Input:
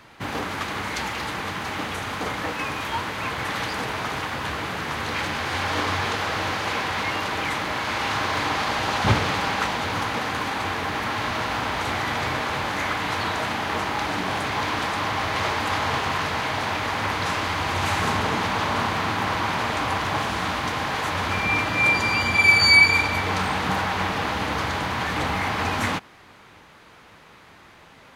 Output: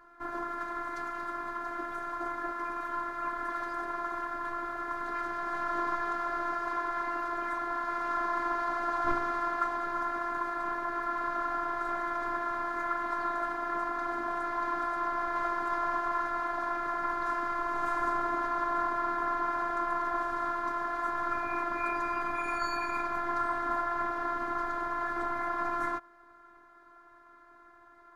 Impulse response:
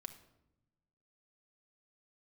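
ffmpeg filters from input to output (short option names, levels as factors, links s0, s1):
-af "afftfilt=real='hypot(re,im)*cos(PI*b)':imag='0':win_size=512:overlap=0.75,highshelf=f=2000:t=q:w=3:g=-11.5,volume=0.501"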